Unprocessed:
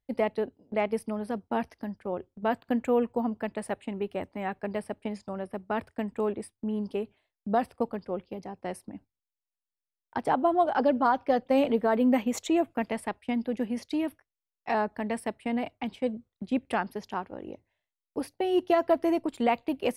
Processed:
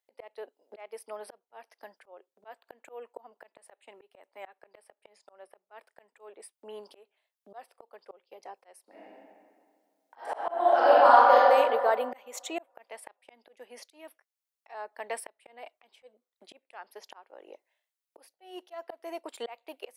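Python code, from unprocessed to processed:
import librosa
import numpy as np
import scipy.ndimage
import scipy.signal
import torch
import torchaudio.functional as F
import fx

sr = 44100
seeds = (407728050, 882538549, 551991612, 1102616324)

y = fx.reverb_throw(x, sr, start_s=8.82, length_s=2.54, rt60_s=2.0, drr_db=-8.0)
y = scipy.signal.sosfilt(scipy.signal.butter(4, 480.0, 'highpass', fs=sr, output='sos'), y)
y = fx.high_shelf(y, sr, hz=5700.0, db=4.5)
y = fx.auto_swell(y, sr, attack_ms=522.0)
y = F.gain(torch.from_numpy(y), 1.0).numpy()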